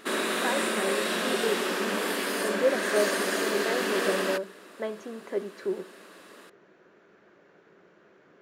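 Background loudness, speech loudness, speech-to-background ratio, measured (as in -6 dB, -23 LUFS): -28.0 LUFS, -33.0 LUFS, -5.0 dB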